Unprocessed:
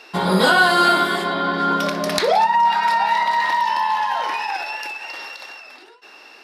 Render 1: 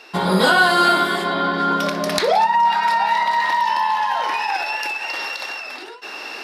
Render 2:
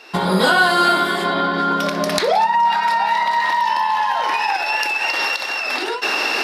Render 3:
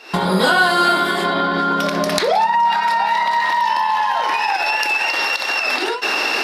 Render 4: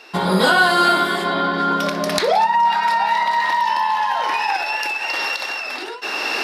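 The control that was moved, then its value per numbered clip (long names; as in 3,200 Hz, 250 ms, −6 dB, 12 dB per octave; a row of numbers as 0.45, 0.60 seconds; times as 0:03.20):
camcorder AGC, rising by: 5.4, 33, 89, 13 dB per second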